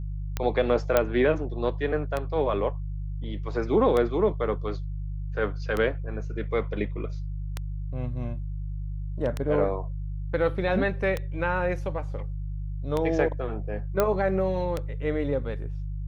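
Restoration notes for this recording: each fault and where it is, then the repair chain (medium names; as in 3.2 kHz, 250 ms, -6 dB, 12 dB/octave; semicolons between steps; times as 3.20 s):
hum 50 Hz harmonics 3 -32 dBFS
tick 33 1/3 rpm -14 dBFS
0.97 s: pop -7 dBFS
14.00 s: pop -9 dBFS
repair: de-click; de-hum 50 Hz, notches 3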